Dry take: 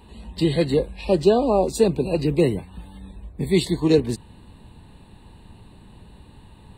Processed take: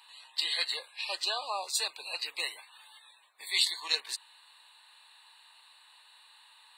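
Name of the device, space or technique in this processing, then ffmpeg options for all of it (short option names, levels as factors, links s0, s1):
headphones lying on a table: -af "highpass=f=1100:w=0.5412,highpass=f=1100:w=1.3066,equalizer=f=4200:t=o:w=0.52:g=6"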